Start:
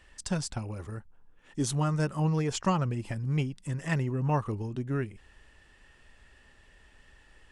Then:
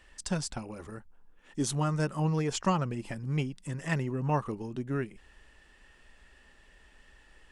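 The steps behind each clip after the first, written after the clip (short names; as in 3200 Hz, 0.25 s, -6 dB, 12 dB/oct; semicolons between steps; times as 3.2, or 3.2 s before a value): bell 100 Hz -15 dB 0.4 oct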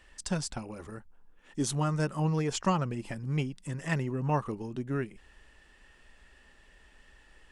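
nothing audible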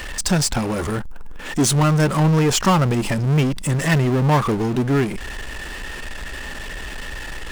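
power-law curve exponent 0.5; gain +7 dB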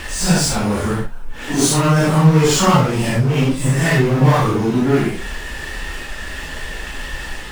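phase scrambler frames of 0.2 s; gain +3.5 dB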